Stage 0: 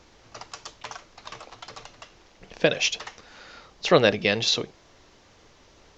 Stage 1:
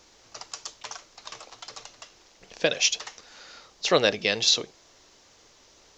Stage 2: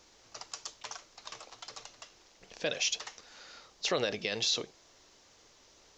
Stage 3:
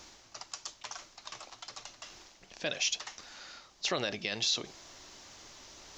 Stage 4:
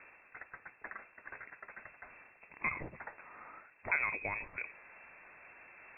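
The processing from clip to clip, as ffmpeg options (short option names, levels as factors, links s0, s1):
-af "bass=f=250:g=-6,treble=f=4000:g=10,volume=0.708"
-af "alimiter=limit=0.178:level=0:latency=1:release=35,volume=0.596"
-af "equalizer=f=470:t=o:w=0.32:g=-8.5,areverse,acompressor=mode=upward:threshold=0.00794:ratio=2.5,areverse"
-af "lowpass=f=2300:t=q:w=0.5098,lowpass=f=2300:t=q:w=0.6013,lowpass=f=2300:t=q:w=0.9,lowpass=f=2300:t=q:w=2.563,afreqshift=-2700,bandreject=f=60:t=h:w=6,bandreject=f=120:t=h:w=6,volume=1.12"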